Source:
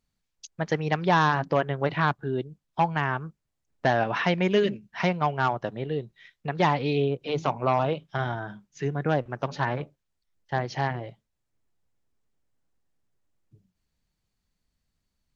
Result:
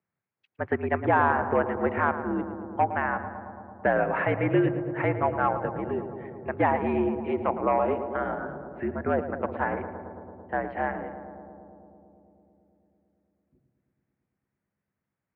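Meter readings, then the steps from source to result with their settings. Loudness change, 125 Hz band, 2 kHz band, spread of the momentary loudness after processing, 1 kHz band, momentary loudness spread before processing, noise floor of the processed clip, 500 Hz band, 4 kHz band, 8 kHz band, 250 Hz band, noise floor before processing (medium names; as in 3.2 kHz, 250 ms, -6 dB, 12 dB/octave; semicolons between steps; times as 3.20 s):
-0.5 dB, -5.5 dB, -0.5 dB, 14 LU, 0.0 dB, 12 LU, under -85 dBFS, +0.5 dB, under -15 dB, no reading, +1.0 dB, -80 dBFS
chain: filtered feedback delay 111 ms, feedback 85%, low-pass 1.7 kHz, level -10 dB; mistuned SSB -61 Hz 200–2300 Hz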